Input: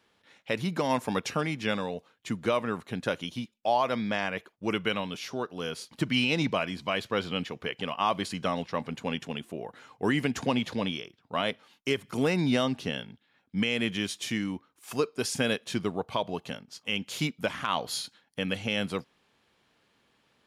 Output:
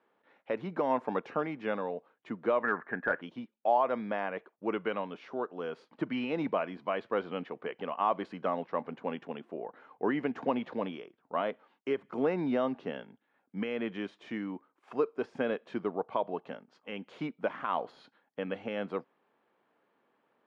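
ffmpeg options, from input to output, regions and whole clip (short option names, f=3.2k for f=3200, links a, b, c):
-filter_complex "[0:a]asettb=1/sr,asplit=3[a][b][c];[a]atrim=end=2.634[d];[b]atrim=start=2.63:end=3.22,asetpts=PTS-STARTPTS,afade=t=in:d=0.004:c=qsin,afade=t=out:st=0.586:d=0.004:c=qsin,lowpass=f=1.7k:t=q:w=9.4,aeval=exprs='clip(val(0),-1,0.188)':c=same,bandreject=f=530:w=14[e];[c]atrim=start=3.216[f];[d][e]acrossfade=d=0.004:c1=hsin:c2=qsin[g];[g][f]acrossfade=d=0.004:c1=qsin:c2=hsin,highpass=300,deesser=0.8,lowpass=1.3k"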